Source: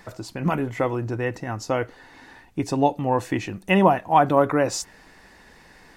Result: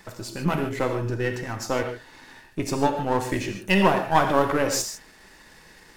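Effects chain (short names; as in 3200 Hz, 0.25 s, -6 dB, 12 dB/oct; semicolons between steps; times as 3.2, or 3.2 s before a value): half-wave gain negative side -7 dB; high shelf 3400 Hz +6.5 dB; notch 730 Hz, Q 12; non-linear reverb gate 0.17 s flat, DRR 4.5 dB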